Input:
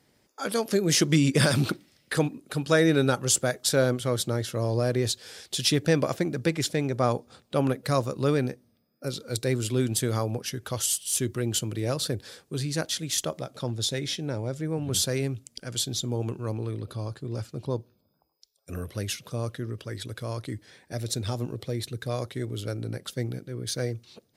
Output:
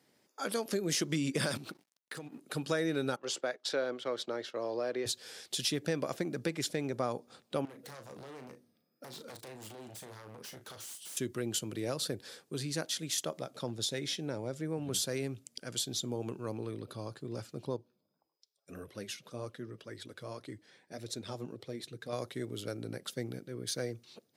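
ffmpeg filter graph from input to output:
-filter_complex "[0:a]asettb=1/sr,asplit=3[s0][s1][s2];[s0]atrim=end=1.574[s3];[s1]atrim=start=1.57:end=2.4,asetpts=PTS-STARTPTS,afade=t=in:d=0.004:c=qsin,afade=t=out:st=0.826:d=0.004:c=qsin,acompressor=threshold=0.02:ratio=8:attack=3.2:release=140:knee=1:detection=peak,aeval=exprs='sgn(val(0))*max(abs(val(0))-0.00178,0)':c=same[s4];[s2]atrim=start=2.396[s5];[s3][s4]acrossfade=d=0.004:c1=hsin:c2=qsin[s6];[s6][s5]acrossfade=d=0.004:c1=qsin:c2=hsin,asettb=1/sr,asplit=3[s7][s8][s9];[s7]atrim=end=3.164[s10];[s8]atrim=start=3.16:end=5.06,asetpts=PTS-STARTPTS,afade=t=in:d=0.004:c=qsin,afade=t=out:st=1.896:d=0.004:c=qsin,agate=range=0.316:threshold=0.0141:ratio=16:release=100:detection=peak,acrossover=split=280 5100:gain=0.1 1 0.0708[s11][s12][s13];[s11][s12][s13]amix=inputs=3:normalize=0[s14];[s9]atrim=start=5.056[s15];[s10][s14]acrossfade=d=0.004:c1=hsin:c2=qsin[s16];[s16][s15]acrossfade=d=0.004:c1=qsin:c2=hsin,asettb=1/sr,asplit=3[s17][s18][s19];[s17]atrim=end=7.654[s20];[s18]atrim=start=7.65:end=11.17,asetpts=PTS-STARTPTS,afade=t=in:d=0.004:c=qsin,afade=t=out:st=3.516:d=0.004:c=qsin,acompressor=threshold=0.02:ratio=16:attack=3.2:release=140:knee=1:detection=peak,aeval=exprs='0.0141*(abs(mod(val(0)/0.0141+3,4)-2)-1)':c=same,asplit=2[s21][s22];[s22]adelay=37,volume=0.355[s23];[s21][s23]amix=inputs=2:normalize=0,atrim=end_sample=155232[s24];[s19]atrim=start=11.166[s25];[s20][s24]acrossfade=d=0.004:c1=hsin:c2=qsin[s26];[s26][s25]acrossfade=d=0.004:c1=qsin:c2=hsin,asettb=1/sr,asplit=3[s27][s28][s29];[s27]atrim=end=17.764[s30];[s28]atrim=start=17.76:end=22.13,asetpts=PTS-STARTPTS,afade=t=in:d=0.004:c=qsin,afade=t=out:st=4.366:d=0.004:c=qsin,highshelf=f=9800:g=-8.5,flanger=delay=1.8:depth=4.9:regen=-47:speed=1.8:shape=triangular[s31];[s29]atrim=start=22.126[s32];[s30][s31]acrossfade=d=0.004:c1=hsin:c2=qsin[s33];[s33][s32]acrossfade=d=0.004:c1=qsin:c2=hsin,highpass=170,acompressor=threshold=0.0447:ratio=2.5,volume=0.631"

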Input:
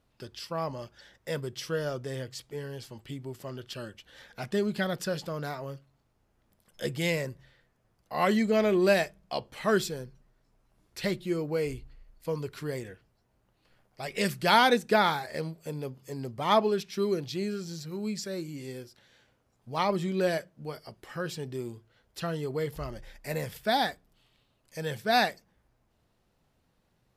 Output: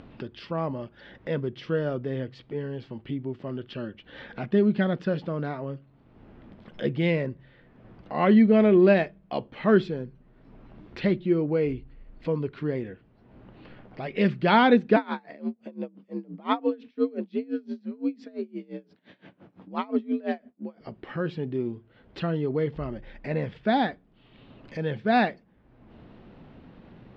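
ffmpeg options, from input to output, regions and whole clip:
-filter_complex "[0:a]asettb=1/sr,asplit=3[s0][s1][s2];[s0]atrim=end=14.964[s3];[s1]atrim=start=14.96:end=20.81,asetpts=PTS-STARTPTS,afade=t=in:d=0.004:c=qsin,afade=t=out:st=5.846:d=0.004:c=qsin,afreqshift=64,aeval=exprs='val(0)*pow(10,-26*(0.5-0.5*cos(2*PI*5.8*n/s))/20)':c=same[s4];[s2]atrim=start=20.806[s5];[s3][s4]acrossfade=d=0.004:c1=hsin:c2=qsin[s6];[s6][s5]acrossfade=d=0.004:c1=qsin:c2=hsin,lowpass=f=3300:w=0.5412,lowpass=f=3300:w=1.3066,equalizer=f=250:w=0.84:g=10,acompressor=mode=upward:threshold=0.0224:ratio=2.5"

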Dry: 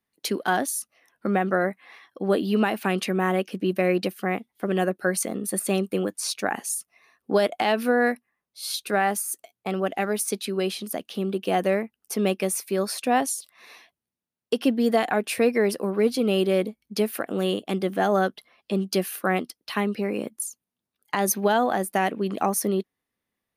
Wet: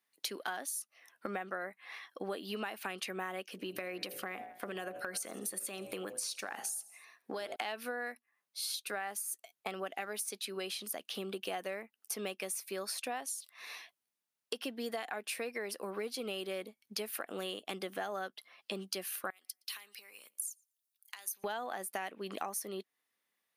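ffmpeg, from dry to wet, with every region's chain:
-filter_complex "[0:a]asettb=1/sr,asplit=3[s0][s1][s2];[s0]atrim=end=3.514[s3];[s1]atrim=start=3.51:end=7.56,asetpts=PTS-STARTPTS,afade=t=in:d=0.004:c=qsin,afade=t=out:st=4.046:d=0.004:c=qsin,bandreject=f=56.37:t=h:w=4,bandreject=f=112.74:t=h:w=4,bandreject=f=169.11:t=h:w=4,bandreject=f=225.48:t=h:w=4,bandreject=f=281.85:t=h:w=4,bandreject=f=338.22:t=h:w=4,bandreject=f=394.59:t=h:w=4,bandreject=f=450.96:t=h:w=4,bandreject=f=507.33:t=h:w=4,bandreject=f=563.7:t=h:w=4,bandreject=f=620.07:t=h:w=4,bandreject=f=676.44:t=h:w=4,bandreject=f=732.81:t=h:w=4,bandreject=f=789.18:t=h:w=4,bandreject=f=845.55:t=h:w=4,bandreject=f=901.92:t=h:w=4,asplit=4[s4][s5][s6][s7];[s5]adelay=81,afreqshift=-64,volume=0.0668[s8];[s6]adelay=162,afreqshift=-128,volume=0.0335[s9];[s7]adelay=243,afreqshift=-192,volume=0.0168[s10];[s4][s8][s9][s10]amix=inputs=4:normalize=0,atrim=end_sample=178605,acompressor=threshold=0.0501:ratio=6:attack=3.2:release=140:knee=1:detection=peak[s11];[s2]atrim=start=7.556[s12];[s3][s11]acrossfade=d=0.004:c1=hsin:c2=qsin[s13];[s13][s12]acrossfade=d=0.004:c1=qsin:c2=hsin,asettb=1/sr,asplit=3[s14][s15][s16];[s14]atrim=end=19.304[s17];[s15]atrim=start=19.3:end=21.44,asetpts=PTS-STARTPTS,afade=t=in:d=0.004:c=qsin,afade=t=out:st=2.136:d=0.004:c=qsin,acompressor=threshold=0.0355:ratio=16:attack=3.2:release=140:knee=1:detection=peak,aderivative,asplit=2[s18][s19];[s19]adelay=116,lowpass=f=1900:p=1,volume=0.075,asplit=2[s20][s21];[s21]adelay=116,lowpass=f=1900:p=1,volume=0.3[s22];[s18][s20][s22]amix=inputs=3:normalize=0,atrim=end_sample=94374[s23];[s16]atrim=start=21.436[s24];[s17][s23]acrossfade=d=0.004:c1=hsin:c2=qsin[s25];[s25][s24]acrossfade=d=0.004:c1=qsin:c2=hsin,highpass=f=1100:p=1,acompressor=threshold=0.0112:ratio=6,volume=1.33"

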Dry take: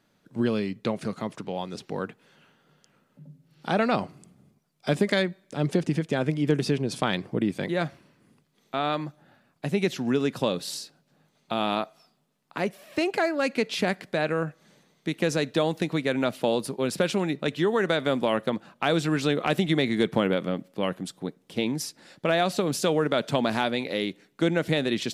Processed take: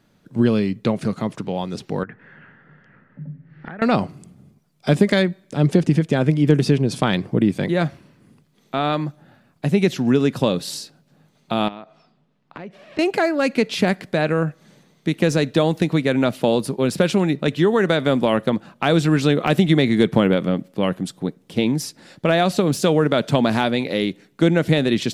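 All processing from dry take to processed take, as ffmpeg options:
-filter_complex "[0:a]asettb=1/sr,asplit=3[s0][s1][s2];[s0]atrim=end=2.034[s3];[s1]atrim=start=2.03:end=3.82,asetpts=PTS-STARTPTS,afade=t=in:d=0.004:c=qsin,afade=t=out:st=1.786:d=0.004:c=qsin,acompressor=threshold=0.00891:ratio=12:attack=3.2:release=140:knee=1:detection=peak,lowpass=f=1800:t=q:w=5.9,lowshelf=f=210:g=6[s4];[s2]atrim=start=3.816[s5];[s3][s4]acrossfade=d=0.004:c1=hsin:c2=qsin[s6];[s6][s5]acrossfade=d=0.004:c1=qsin:c2=hsin,asettb=1/sr,asplit=3[s7][s8][s9];[s7]atrim=end=11.684[s10];[s8]atrim=start=11.68:end=12.99,asetpts=PTS-STARTPTS,afade=t=in:d=0.004:c=qsin,afade=t=out:st=1.306:d=0.004:c=qsin,lowpass=3500,acompressor=threshold=0.0126:ratio=6:attack=3.2:release=140:knee=1:detection=peak[s11];[s9]atrim=start=12.986[s12];[s10][s11]acrossfade=d=0.004:c1=hsin:c2=qsin[s13];[s13][s12]acrossfade=d=0.004:c1=qsin:c2=hsin,deesser=0.55,lowshelf=f=240:g=8,volume=1.68"

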